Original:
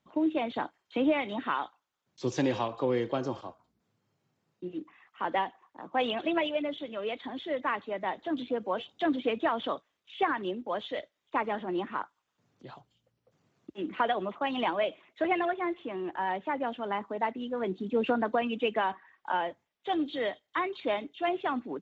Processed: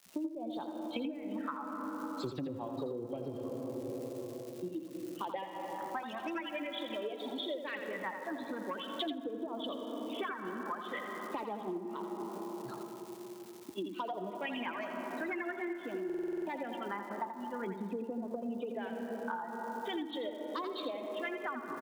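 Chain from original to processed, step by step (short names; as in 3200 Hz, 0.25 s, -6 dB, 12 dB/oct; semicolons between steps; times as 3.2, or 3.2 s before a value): per-bin expansion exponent 1.5; soft clip -22.5 dBFS, distortion -19 dB; phaser stages 4, 0.45 Hz, lowest notch 500–1900 Hz; treble ducked by the level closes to 510 Hz, closed at -29.5 dBFS; on a send at -9 dB: reverb RT60 4.3 s, pre-delay 90 ms; on the sum: crackle 380/s -60 dBFS; HPF 60 Hz; low shelf 250 Hz -6 dB; compressor 10:1, threshold -50 dBFS, peak gain reduction 20.5 dB; high shelf 3600 Hz +6.5 dB; echo 84 ms -8 dB; stuck buffer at 16.05, samples 2048, times 8; gain +13.5 dB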